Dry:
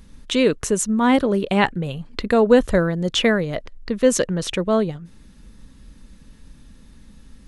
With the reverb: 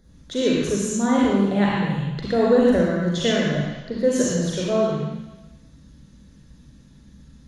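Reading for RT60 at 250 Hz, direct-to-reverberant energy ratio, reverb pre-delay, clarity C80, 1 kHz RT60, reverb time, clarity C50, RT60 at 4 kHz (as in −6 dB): 1.0 s, −4.5 dB, 37 ms, −0.5 dB, 1.1 s, 1.1 s, −2.5 dB, 1.2 s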